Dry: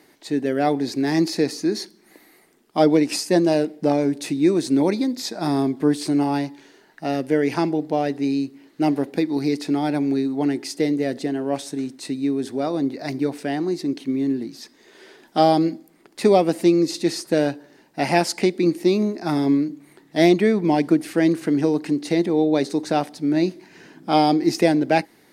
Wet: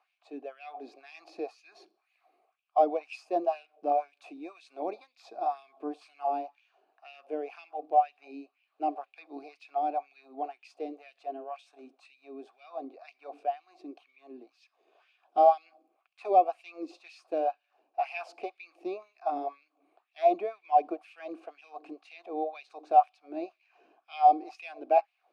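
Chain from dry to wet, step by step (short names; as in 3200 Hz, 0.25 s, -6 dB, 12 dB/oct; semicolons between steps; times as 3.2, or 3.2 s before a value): vowel filter a; LFO high-pass sine 2 Hz 280–2600 Hz; dynamic EQ 780 Hz, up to +5 dB, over -36 dBFS, Q 1.2; gain -5 dB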